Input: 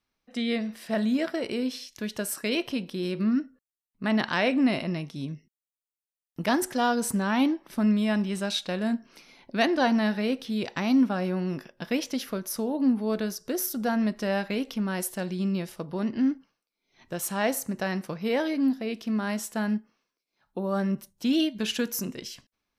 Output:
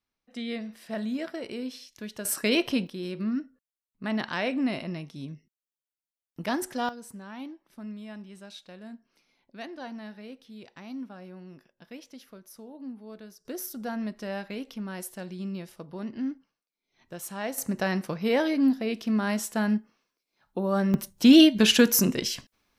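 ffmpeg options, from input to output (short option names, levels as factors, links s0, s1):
-af "asetnsamples=n=441:p=0,asendcmd='2.25 volume volume 3.5dB;2.87 volume volume -4.5dB;6.89 volume volume -16.5dB;13.45 volume volume -7dB;17.58 volume volume 2dB;20.94 volume volume 9.5dB',volume=0.501"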